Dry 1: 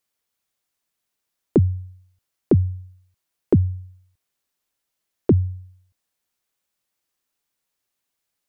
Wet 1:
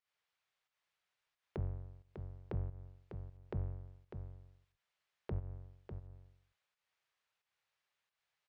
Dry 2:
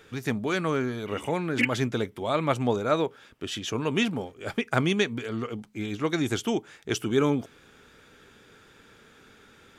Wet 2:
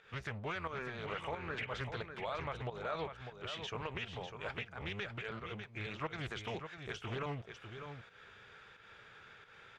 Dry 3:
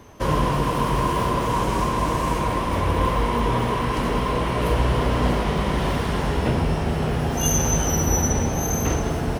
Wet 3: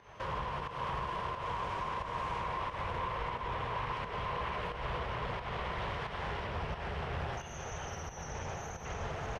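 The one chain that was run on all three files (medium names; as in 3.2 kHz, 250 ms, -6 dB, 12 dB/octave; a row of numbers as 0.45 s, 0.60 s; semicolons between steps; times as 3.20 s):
octave divider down 1 oct, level -1 dB; tilt EQ +2.5 dB/octave; compression 2:1, threshold -36 dBFS; peak limiter -25 dBFS; peaking EQ 270 Hz -14.5 dB 0.75 oct; volume shaper 89 bpm, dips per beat 1, -11 dB, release 182 ms; low-pass 2.5 kHz 12 dB/octave; delay 599 ms -8 dB; loudspeaker Doppler distortion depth 0.32 ms; trim -1 dB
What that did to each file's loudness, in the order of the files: -24.5 LU, -14.0 LU, -15.5 LU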